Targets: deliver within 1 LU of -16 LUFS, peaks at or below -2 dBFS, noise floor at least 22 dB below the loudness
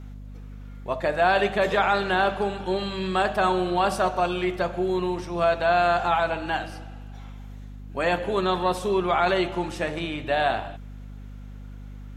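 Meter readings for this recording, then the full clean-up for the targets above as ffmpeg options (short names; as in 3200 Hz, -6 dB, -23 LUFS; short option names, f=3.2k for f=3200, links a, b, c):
hum 50 Hz; harmonics up to 250 Hz; hum level -37 dBFS; loudness -24.0 LUFS; peak -8.0 dBFS; loudness target -16.0 LUFS
-> -af "bandreject=f=50:t=h:w=6,bandreject=f=100:t=h:w=6,bandreject=f=150:t=h:w=6,bandreject=f=200:t=h:w=6,bandreject=f=250:t=h:w=6"
-af "volume=8dB,alimiter=limit=-2dB:level=0:latency=1"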